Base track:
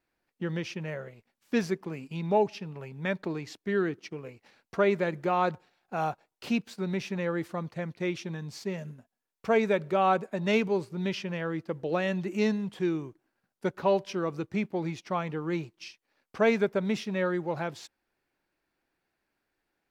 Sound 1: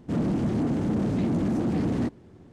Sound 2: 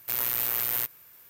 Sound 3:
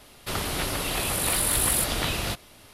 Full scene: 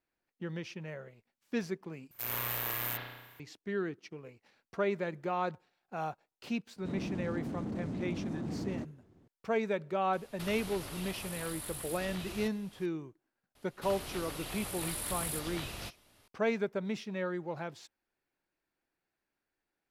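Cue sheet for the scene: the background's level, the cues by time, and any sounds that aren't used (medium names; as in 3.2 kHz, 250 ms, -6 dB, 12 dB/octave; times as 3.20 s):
base track -7 dB
2.11 s: replace with 2 -9 dB + spring tank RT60 1.1 s, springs 33 ms, chirp 40 ms, DRR -8 dB
6.76 s: add 1 -12.5 dB
10.13 s: add 3 -8.5 dB + compression 5:1, threshold -32 dBFS
13.55 s: add 3 -14 dB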